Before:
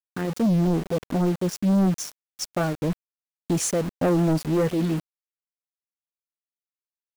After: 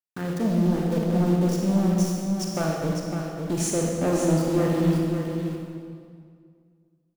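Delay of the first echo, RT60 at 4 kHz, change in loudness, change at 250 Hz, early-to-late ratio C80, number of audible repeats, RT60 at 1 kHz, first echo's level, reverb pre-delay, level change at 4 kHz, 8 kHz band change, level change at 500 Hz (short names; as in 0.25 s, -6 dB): 0.554 s, 1.6 s, -0.5 dB, +0.5 dB, 0.5 dB, 1, 2.0 s, -7.0 dB, 32 ms, -0.5 dB, -0.5 dB, +0.5 dB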